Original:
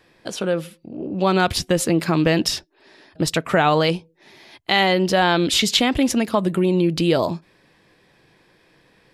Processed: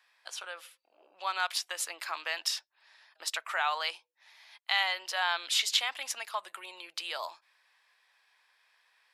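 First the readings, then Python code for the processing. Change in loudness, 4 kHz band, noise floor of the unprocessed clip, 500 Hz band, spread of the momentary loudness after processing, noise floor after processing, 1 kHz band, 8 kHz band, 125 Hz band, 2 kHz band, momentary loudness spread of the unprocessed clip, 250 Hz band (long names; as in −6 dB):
−12.5 dB, −8.5 dB, −59 dBFS, −25.0 dB, 15 LU, −74 dBFS, −12.0 dB, −8.5 dB, below −40 dB, −8.5 dB, 12 LU, below −40 dB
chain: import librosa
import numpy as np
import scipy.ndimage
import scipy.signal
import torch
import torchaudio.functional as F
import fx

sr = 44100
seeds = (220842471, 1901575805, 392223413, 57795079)

y = scipy.signal.sosfilt(scipy.signal.butter(4, 890.0, 'highpass', fs=sr, output='sos'), x)
y = F.gain(torch.from_numpy(y), -8.5).numpy()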